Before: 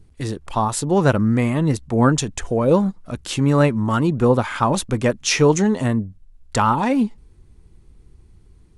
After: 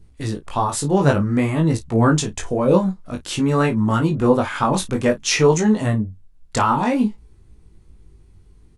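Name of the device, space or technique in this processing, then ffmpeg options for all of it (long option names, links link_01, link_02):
double-tracked vocal: -filter_complex "[0:a]asplit=2[link_01][link_02];[link_02]adelay=33,volume=-13dB[link_03];[link_01][link_03]amix=inputs=2:normalize=0,flanger=delay=18:depth=3.3:speed=0.53,volume=3dB"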